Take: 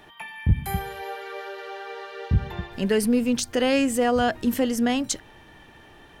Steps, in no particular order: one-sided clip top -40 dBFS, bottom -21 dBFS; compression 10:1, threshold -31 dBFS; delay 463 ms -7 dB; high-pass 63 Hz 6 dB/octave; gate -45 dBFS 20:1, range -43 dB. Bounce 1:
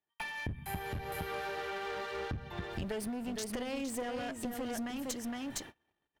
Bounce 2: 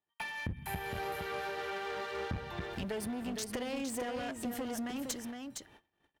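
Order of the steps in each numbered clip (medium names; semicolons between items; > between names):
delay > compression > high-pass > gate > one-sided clip; gate > compression > delay > one-sided clip > high-pass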